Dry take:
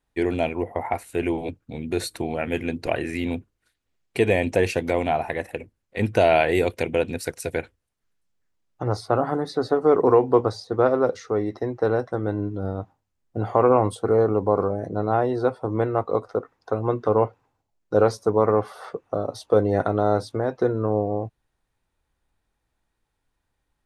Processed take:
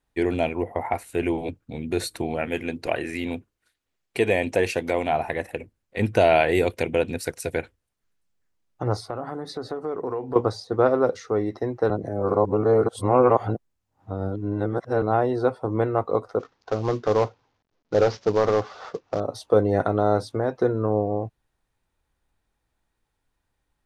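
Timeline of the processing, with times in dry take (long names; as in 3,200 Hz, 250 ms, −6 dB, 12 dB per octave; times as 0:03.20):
0:02.46–0:05.13: low-shelf EQ 230 Hz −6.5 dB
0:09.03–0:10.36: downward compressor 2.5 to 1, threshold −31 dBFS
0:11.90–0:15.02: reverse
0:16.39–0:19.20: variable-slope delta modulation 32 kbit/s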